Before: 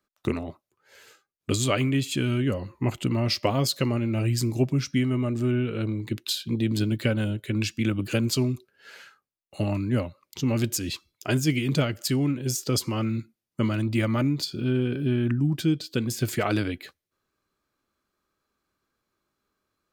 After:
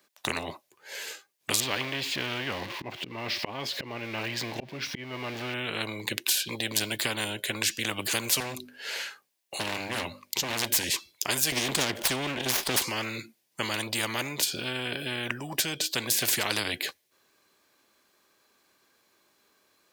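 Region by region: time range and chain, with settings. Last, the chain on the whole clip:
1.6–5.54 switching spikes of -25.5 dBFS + auto swell 0.428 s + air absorption 330 m
8.4–10.84 overloaded stage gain 26.5 dB + notches 50/100/150/200/250/300 Hz
11.52–12.82 tilt -1.5 dB/oct + small resonant body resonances 250/360/3300 Hz, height 13 dB, ringing for 25 ms + running maximum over 5 samples
whole clip: HPF 660 Hz 6 dB/oct; bell 1300 Hz -11.5 dB 0.27 oct; spectral compressor 4:1; gain +1 dB

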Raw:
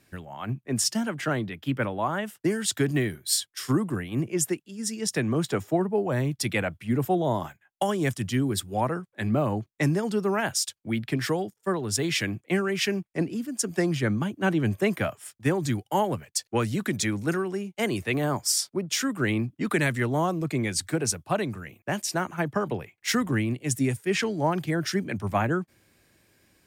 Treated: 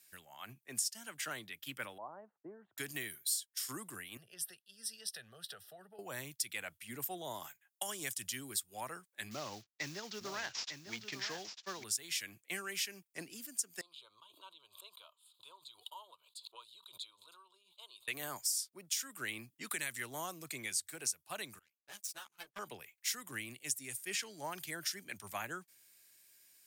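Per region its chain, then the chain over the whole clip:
1.98–2.78 inverse Chebyshev low-pass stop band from 5100 Hz, stop band 80 dB + low shelf 240 Hz -10.5 dB
4.17–5.99 LPF 11000 Hz + fixed phaser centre 1500 Hz, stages 8 + compressor 3:1, threshold -35 dBFS
9.31–11.84 CVSD 32 kbps + short-mantissa float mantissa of 6-bit + echo 0.899 s -9 dB
13.81–18.08 double band-pass 1900 Hz, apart 2 oct + fixed phaser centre 1200 Hz, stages 8 + backwards sustainer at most 100 dB/s
21.59–22.59 notch 1900 Hz, Q 8.1 + power-law curve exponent 2 + ensemble effect
whole clip: pre-emphasis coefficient 0.97; compressor 4:1, threshold -38 dBFS; gain +3 dB

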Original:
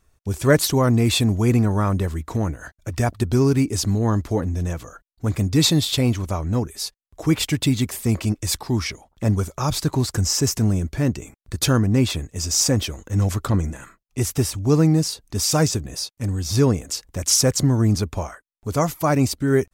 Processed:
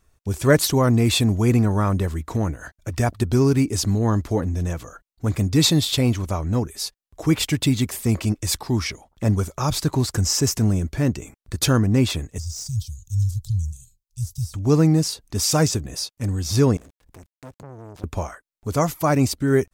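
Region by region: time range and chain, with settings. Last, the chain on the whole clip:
12.38–14.54 inverse Chebyshev band-stop 280–1900 Hz, stop band 50 dB + de-esser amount 75%
16.77–18.04 switching dead time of 0.27 ms + compressor 2.5:1, threshold -40 dBFS + core saturation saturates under 690 Hz
whole clip: dry

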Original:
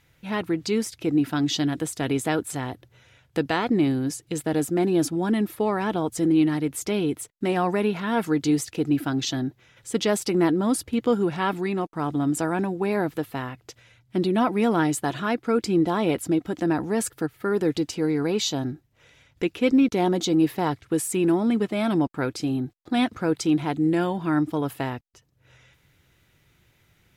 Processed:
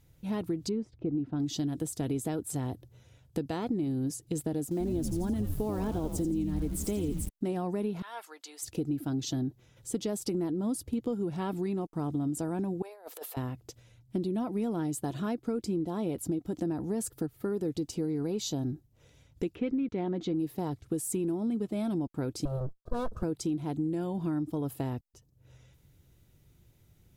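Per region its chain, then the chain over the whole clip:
0.69–1.4 tape spacing loss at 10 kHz 36 dB + mismatched tape noise reduction decoder only
4.71–7.29 frequency-shifting echo 85 ms, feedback 54%, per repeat -120 Hz, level -8 dB + sample gate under -36 dBFS
8.02–8.63 Bessel high-pass 1200 Hz, order 4 + high shelf 4400 Hz -9.5 dB
12.82–13.37 steep high-pass 490 Hz + negative-ratio compressor -37 dBFS, ratio -0.5
19.55–20.35 EQ curve 820 Hz 0 dB, 2000 Hz +8 dB, 13000 Hz -27 dB + mismatched tape noise reduction decoder only
22.45–23.23 minimum comb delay 1.8 ms + resonant high shelf 1700 Hz -7 dB, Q 3
whole clip: bell 1900 Hz -14 dB 2.4 oct; compressor, threshold -29 dBFS; low shelf 82 Hz +6 dB

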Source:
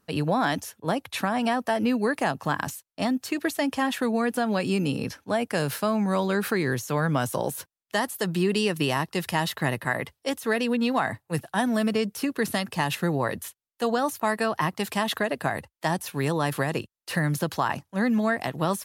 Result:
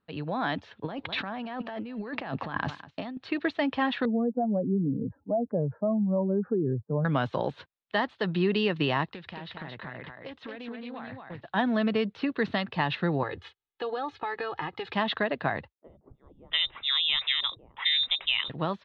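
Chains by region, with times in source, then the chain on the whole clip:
0.71–3.17 echo 0.203 s -23 dB + negative-ratio compressor -33 dBFS
4.05–7.05 spectral contrast raised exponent 2.1 + inverse Chebyshev low-pass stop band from 2900 Hz, stop band 60 dB
9.09–11.42 compressor 12:1, threshold -35 dBFS + echo 0.224 s -4.5 dB + Doppler distortion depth 0.17 ms
13.23–14.93 comb 2.4 ms, depth 90% + compressor 3:1, threshold -30 dBFS
15.73–18.5 inverted band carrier 3800 Hz + three bands offset in time mids, lows, highs 40/690 ms, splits 190/570 Hz
whole clip: elliptic low-pass 3900 Hz, stop band 80 dB; AGC gain up to 8 dB; gain -8.5 dB

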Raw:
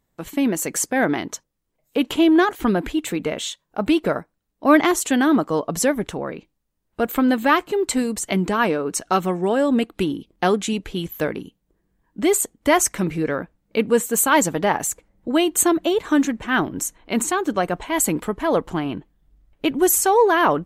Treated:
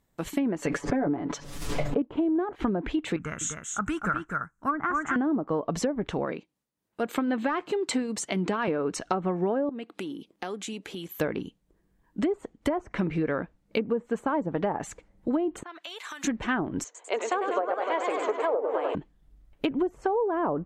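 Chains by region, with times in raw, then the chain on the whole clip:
0.62–2.02 G.711 law mismatch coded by mu + comb 7 ms, depth 77% + backwards sustainer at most 57 dB/s
3.16–5.16 EQ curve 140 Hz 0 dB, 280 Hz -12 dB, 590 Hz -18 dB, 930 Hz -8 dB, 1400 Hz +8 dB, 2100 Hz -8 dB, 4500 Hz -23 dB, 6600 Hz +5 dB, 11000 Hz -5 dB + echo 0.251 s -5.5 dB
6.25–8.68 HPF 140 Hz + hard clip -8 dBFS + tremolo triangle 3.7 Hz, depth 60%
9.69–11.19 HPF 210 Hz + compressor 3:1, threshold -36 dBFS
15.63–16.24 HPF 1400 Hz + compressor 12:1, threshold -35 dBFS
16.84–18.95 Chebyshev band-pass 430–7200 Hz, order 4 + tilt -3 dB/oct + warbling echo 0.1 s, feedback 79%, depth 149 cents, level -6.5 dB
whole clip: treble ducked by the level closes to 760 Hz, closed at -14 dBFS; compressor 10:1, threshold -23 dBFS

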